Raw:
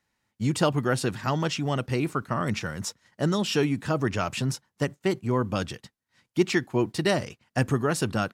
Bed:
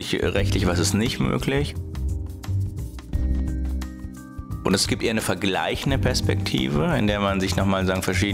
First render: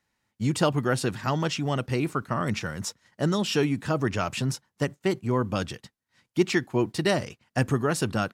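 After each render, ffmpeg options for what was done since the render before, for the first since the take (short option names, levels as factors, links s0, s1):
-af anull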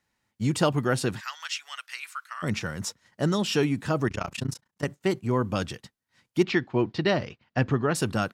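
-filter_complex "[0:a]asplit=3[s0][s1][s2];[s0]afade=t=out:st=1.19:d=0.02[s3];[s1]highpass=f=1400:w=0.5412,highpass=f=1400:w=1.3066,afade=t=in:st=1.19:d=0.02,afade=t=out:st=2.42:d=0.02[s4];[s2]afade=t=in:st=2.42:d=0.02[s5];[s3][s4][s5]amix=inputs=3:normalize=0,asettb=1/sr,asplit=3[s6][s7][s8];[s6]atrim=end=4.084[s9];[s7]atrim=start=4.08:end=4.85,asetpts=PTS-STARTPTS,afade=t=in:d=0.004:c=qsin,afade=t=out:st=0.766:d=0.004:c=qsin,tremolo=f=29:d=0.974[s10];[s8]atrim=start=4.846[s11];[s9][s10]acrossfade=d=0.004:c1=hsin:c2=qsin[s12];[s12][s11]acrossfade=d=0.004:c1=qsin:c2=hsin,asettb=1/sr,asplit=3[s13][s14][s15];[s13]atrim=end=6.434[s16];[s14]atrim=start=6.43:end=7.95,asetpts=PTS-STARTPTS,afade=t=in:d=0.004:c=qsin,afade=t=out:st=1.516:d=0.004:c=qsin,lowpass=f=4600:w=0.5412,lowpass=f=4600:w=1.3066[s17];[s15]atrim=start=7.946[s18];[s16][s17]acrossfade=d=0.004:c1=hsin:c2=qsin[s19];[s19][s18]acrossfade=d=0.004:c1=qsin:c2=hsin"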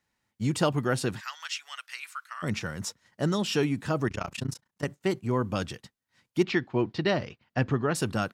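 -af "volume=0.794"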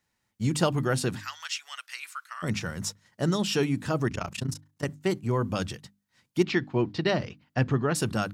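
-af "bass=f=250:g=3,treble=f=4000:g=3,bandreject=f=50:t=h:w=6,bandreject=f=100:t=h:w=6,bandreject=f=150:t=h:w=6,bandreject=f=200:t=h:w=6,bandreject=f=250:t=h:w=6,bandreject=f=300:t=h:w=6"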